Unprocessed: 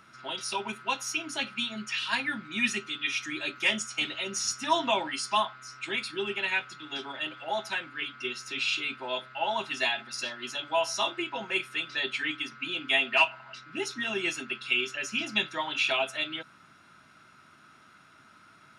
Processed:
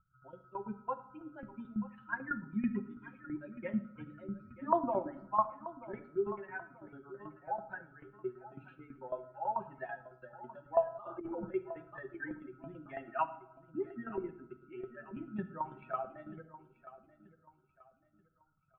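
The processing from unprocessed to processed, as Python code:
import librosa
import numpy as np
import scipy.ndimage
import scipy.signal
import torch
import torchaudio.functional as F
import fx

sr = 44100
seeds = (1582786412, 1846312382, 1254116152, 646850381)

y = fx.bin_expand(x, sr, power=2.0)
y = fx.level_steps(y, sr, step_db=9, at=(14.09, 14.83))
y = fx.tremolo_shape(y, sr, shape='saw_down', hz=9.1, depth_pct=80)
y = fx.echo_feedback(y, sr, ms=934, feedback_pct=34, wet_db=-16.0)
y = fx.room_shoebox(y, sr, seeds[0], volume_m3=2100.0, walls='furnished', distance_m=0.94)
y = fx.over_compress(y, sr, threshold_db=-45.0, ratio=-1.0, at=(10.92, 11.51))
y = scipy.signal.sosfilt(scipy.signal.ellip(4, 1.0, 80, 1500.0, 'lowpass', fs=sr, output='sos'), y)
y = fx.low_shelf(y, sr, hz=190.0, db=11.5)
y = y * 10.0 ** (3.5 / 20.0)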